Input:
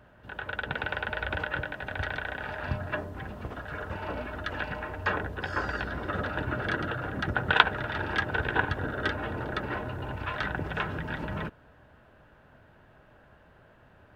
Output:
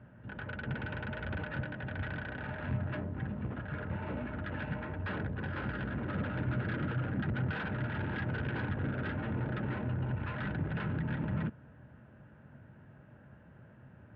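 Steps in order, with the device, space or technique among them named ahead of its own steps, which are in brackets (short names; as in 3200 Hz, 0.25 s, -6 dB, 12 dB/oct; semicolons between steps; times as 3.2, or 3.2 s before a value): high shelf 3400 Hz -9.5 dB; guitar amplifier (tube stage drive 34 dB, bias 0.4; tone controls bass +8 dB, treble -10 dB; speaker cabinet 100–3600 Hz, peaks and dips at 130 Hz +4 dB, 220 Hz +4 dB, 420 Hz -3 dB, 710 Hz -5 dB, 1100 Hz -5 dB)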